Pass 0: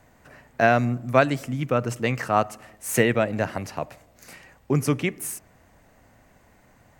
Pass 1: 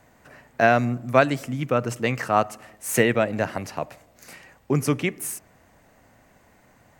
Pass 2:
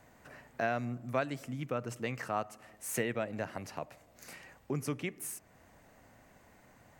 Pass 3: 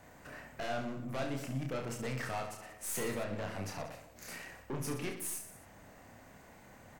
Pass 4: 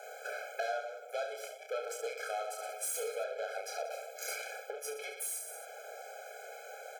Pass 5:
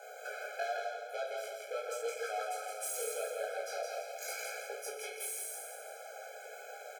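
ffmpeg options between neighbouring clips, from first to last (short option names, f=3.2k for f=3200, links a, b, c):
-af "lowshelf=f=88:g=-6.5,volume=1dB"
-af "acompressor=threshold=-44dB:ratio=1.5,volume=-4dB"
-filter_complex "[0:a]aeval=exprs='(tanh(89.1*val(0)+0.35)-tanh(0.35))/89.1':c=same,asplit=2[a][b];[b]aecho=0:1:30|69|119.7|185.6|271.3:0.631|0.398|0.251|0.158|0.1[c];[a][c]amix=inputs=2:normalize=0,volume=3.5dB"
-af "acompressor=threshold=-45dB:ratio=5,afftfilt=real='re*eq(mod(floor(b*sr/1024/430),2),1)':imag='im*eq(mod(floor(b*sr/1024/430),2),1)':win_size=1024:overlap=0.75,volume=13dB"
-filter_complex "[0:a]flanger=delay=16:depth=4.6:speed=0.88,asplit=2[a][b];[b]aecho=0:1:166|332|498|664|830:0.668|0.287|0.124|0.0531|0.0228[c];[a][c]amix=inputs=2:normalize=0,volume=1dB"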